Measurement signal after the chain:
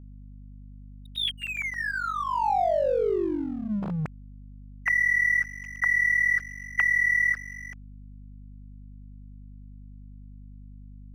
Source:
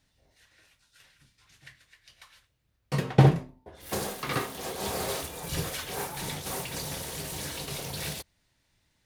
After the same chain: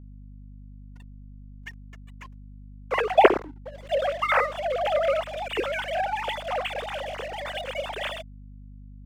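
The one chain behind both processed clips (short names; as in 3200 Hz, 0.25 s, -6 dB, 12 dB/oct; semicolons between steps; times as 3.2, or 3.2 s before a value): sine-wave speech; backlash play -40.5 dBFS; hum 50 Hz, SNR 16 dB; gain +4 dB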